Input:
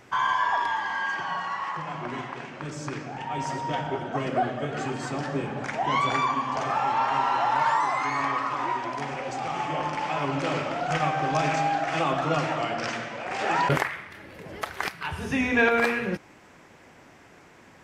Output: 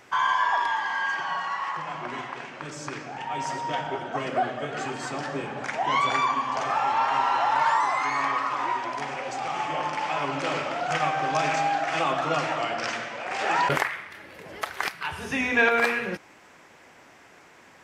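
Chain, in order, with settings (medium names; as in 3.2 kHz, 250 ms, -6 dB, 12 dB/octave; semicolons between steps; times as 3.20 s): bass shelf 330 Hz -10 dB; trim +2 dB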